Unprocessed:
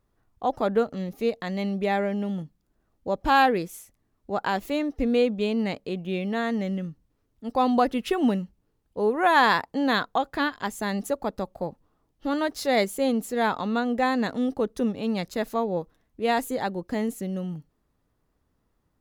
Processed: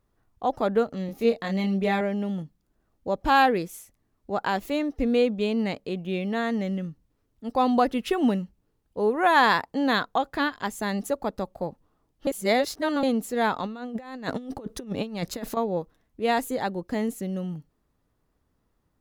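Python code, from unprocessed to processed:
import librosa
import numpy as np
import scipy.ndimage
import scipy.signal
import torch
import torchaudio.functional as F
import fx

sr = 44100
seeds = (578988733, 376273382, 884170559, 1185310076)

y = fx.doubler(x, sr, ms=26.0, db=-4.0, at=(1.06, 2.01))
y = fx.over_compress(y, sr, threshold_db=-31.0, ratio=-0.5, at=(13.61, 15.57))
y = fx.edit(y, sr, fx.reverse_span(start_s=12.27, length_s=0.76), tone=tone)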